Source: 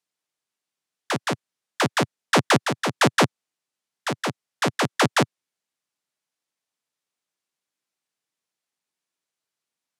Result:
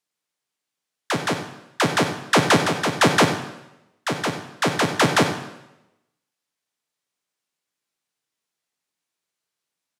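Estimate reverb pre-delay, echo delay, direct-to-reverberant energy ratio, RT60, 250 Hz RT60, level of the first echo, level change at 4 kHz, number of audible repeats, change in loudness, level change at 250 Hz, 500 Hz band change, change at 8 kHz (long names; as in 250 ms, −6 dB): 8 ms, 65 ms, 5.5 dB, 0.90 s, 0.90 s, −14.0 dB, +2.5 dB, 2, +2.5 dB, +2.5 dB, +2.5 dB, +2.5 dB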